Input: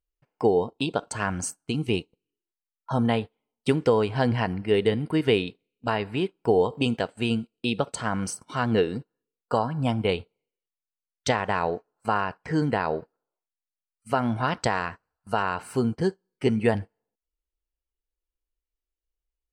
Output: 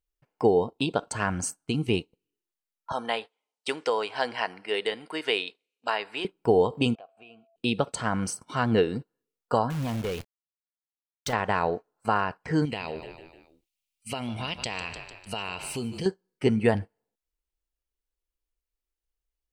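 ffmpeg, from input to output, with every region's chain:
-filter_complex "[0:a]asettb=1/sr,asplit=3[a][b][c];[a]atrim=end=2.924[d];[b]atrim=start=2.92:end=6.25,asetpts=PTS-STARTPTS,afade=t=in:d=0.004:c=qsin,afade=t=out:st=3.326:d=0.004:c=qsin,highpass=610,lowpass=7k,aemphasis=mode=production:type=cd[e];[c]atrim=start=6.246[f];[d][e]acrossfade=d=0.004:c1=hsin:c2=qsin[g];[g][f]acrossfade=d=0.004:c1=qsin:c2=hsin,asettb=1/sr,asplit=3[h][i][j];[h]atrim=end=6.954[k];[i]atrim=start=6.95:end=7.56,asetpts=PTS-STARTPTS,afade=t=in:d=0.004:c=qsin,afade=t=out:st=0.606:d=0.004:c=qsin,asplit=3[l][m][n];[l]bandpass=f=730:t=q:w=8,volume=0dB[o];[m]bandpass=f=1.09k:t=q:w=8,volume=-6dB[p];[n]bandpass=f=2.44k:t=q:w=8,volume=-9dB[q];[o][p][q]amix=inputs=3:normalize=0,acompressor=threshold=-52dB:ratio=2:attack=3.2:release=140:knee=1:detection=peak,aeval=exprs='val(0)+0.000708*sin(2*PI*670*n/s)':c=same[r];[j]atrim=start=7.556[s];[k][r]acrossfade=d=0.004:c1=hsin:c2=qsin[t];[t][s]acrossfade=d=0.004:c1=qsin:c2=hsin,asettb=1/sr,asplit=3[u][v][w];[u]atrim=end=9.704[x];[v]atrim=start=9.7:end=11.33,asetpts=PTS-STARTPTS,afade=t=in:d=0.004:c=qsin,afade=t=out:st=1.626:d=0.004:c=qsin,acrusher=bits=7:dc=4:mix=0:aa=0.000001,acompressor=threshold=-25dB:ratio=2.5:attack=3.2:release=140:knee=1:detection=peak,asoftclip=type=hard:threshold=-25.5dB[y];[w]atrim=start=11.326[z];[x][y]acrossfade=d=0.004:c1=hsin:c2=qsin[aa];[aa][z]acrossfade=d=0.004:c1=qsin:c2=hsin,asettb=1/sr,asplit=3[ab][ac][ad];[ab]atrim=end=12.654[ae];[ac]atrim=start=12.65:end=16.06,asetpts=PTS-STARTPTS,afade=t=in:d=0.004:c=qsin,afade=t=out:st=3.406:d=0.004:c=qsin,highshelf=f=2k:t=q:w=3:g=8.5,asplit=5[af][ag][ah][ai][aj];[ag]adelay=150,afreqshift=-34,volume=-16dB[ak];[ah]adelay=300,afreqshift=-68,volume=-22.2dB[al];[ai]adelay=450,afreqshift=-102,volume=-28.4dB[am];[aj]adelay=600,afreqshift=-136,volume=-34.6dB[an];[af][ak][al][am][an]amix=inputs=5:normalize=0,atrim=end_sample=150381,acompressor=threshold=-32dB:ratio=2.5:attack=3.2:release=140:knee=1:detection=peak[ao];[ad]atrim=start=16.056[ap];[ae][ao]acrossfade=d=0.004:c1=hsin:c2=qsin[aq];[aq][ap]acrossfade=d=0.004:c1=qsin:c2=hsin"

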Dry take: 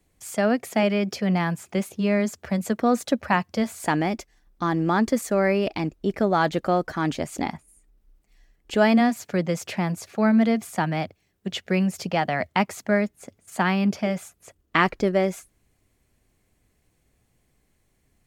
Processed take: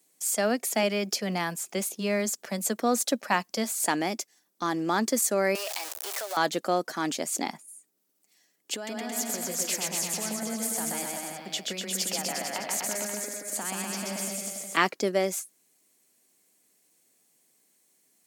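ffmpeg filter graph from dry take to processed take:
-filter_complex "[0:a]asettb=1/sr,asplit=3[a][b][c];[a]atrim=end=5.554[d];[b]atrim=start=5.55:end=6.37,asetpts=PTS-STARTPTS,afade=t=in:d=0.004:c=qsin,afade=t=out:st=0.816:d=0.004:c=qsin,aeval=exprs='val(0)+0.5*0.0447*sgn(val(0))':c=same,highpass=f=620:w=0.5412,highpass=f=620:w=1.3066,acompressor=threshold=-30dB:ratio=2.5:attack=3.2:release=140:knee=1:detection=peak[e];[c]atrim=start=6.366[f];[d][e]acrossfade=d=0.004:c1=hsin:c2=qsin[g];[g][f]acrossfade=d=0.004:c1=qsin:c2=hsin,asettb=1/sr,asplit=3[h][i][j];[h]atrim=end=8.744[k];[i]atrim=start=8.74:end=14.77,asetpts=PTS-STARTPTS,afade=t=in:d=0.004:c=qsin,afade=t=out:st=6.026:d=0.004:c=qsin,acompressor=threshold=-28dB:ratio=16:attack=3.2:release=140:knee=1:detection=peak,aecho=1:1:130|247|352.3|447.1|532.4|609.1:0.794|0.631|0.501|0.398|0.316|0.251,atrim=end_sample=265923[l];[j]atrim=start=14.766[m];[k][l]acrossfade=d=0.004:c1=hsin:c2=qsin[n];[n][m]acrossfade=d=0.004:c1=qsin:c2=hsin,highpass=f=190:w=0.5412,highpass=f=190:w=1.3066,bass=f=250:g=-4,treble=f=4k:g=14,volume=-3.5dB"

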